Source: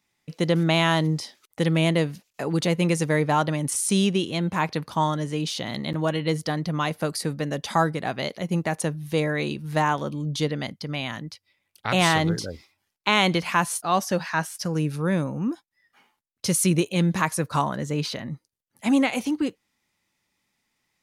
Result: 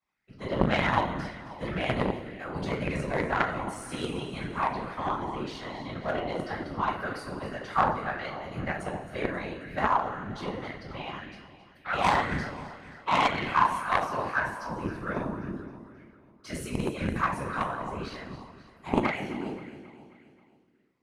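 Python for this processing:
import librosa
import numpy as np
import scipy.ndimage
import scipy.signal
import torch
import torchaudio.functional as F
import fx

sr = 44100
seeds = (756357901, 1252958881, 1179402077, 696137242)

p1 = fx.bass_treble(x, sr, bass_db=-5, treble_db=-10)
p2 = fx.comb_fb(p1, sr, f0_hz=64.0, decay_s=1.5, harmonics='all', damping=0.0, mix_pct=70)
p3 = fx.room_shoebox(p2, sr, seeds[0], volume_m3=39.0, walls='mixed', distance_m=2.8)
p4 = fx.whisperise(p3, sr, seeds[1])
p5 = p4 + fx.echo_feedback(p4, sr, ms=267, feedback_pct=54, wet_db=-13.5, dry=0)
p6 = fx.cheby_harmonics(p5, sr, harmonics=(2, 3, 8), levels_db=(-9, -15, -29), full_scale_db=-1.0)
p7 = fx.bell_lfo(p6, sr, hz=1.9, low_hz=890.0, high_hz=1800.0, db=10)
y = p7 * librosa.db_to_amplitude(-7.5)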